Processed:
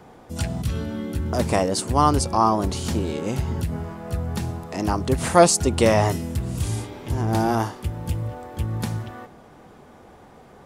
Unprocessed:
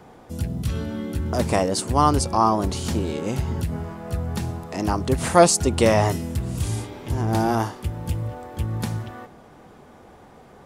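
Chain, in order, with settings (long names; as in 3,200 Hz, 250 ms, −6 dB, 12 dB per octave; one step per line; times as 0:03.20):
gain on a spectral selection 0:00.36–0:00.62, 610–9,600 Hz +10 dB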